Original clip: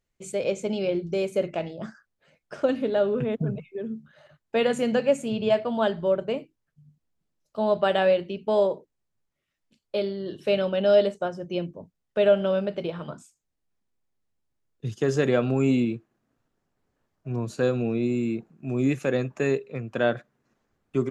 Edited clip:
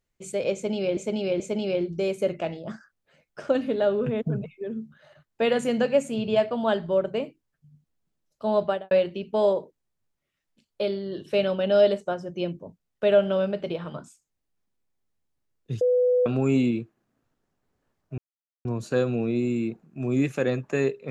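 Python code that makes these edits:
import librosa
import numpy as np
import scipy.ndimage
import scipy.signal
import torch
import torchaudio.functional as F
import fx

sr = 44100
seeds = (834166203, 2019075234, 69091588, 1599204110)

y = fx.studio_fade_out(x, sr, start_s=7.75, length_s=0.3)
y = fx.edit(y, sr, fx.repeat(start_s=0.54, length_s=0.43, count=3),
    fx.bleep(start_s=14.95, length_s=0.45, hz=497.0, db=-17.5),
    fx.insert_silence(at_s=17.32, length_s=0.47), tone=tone)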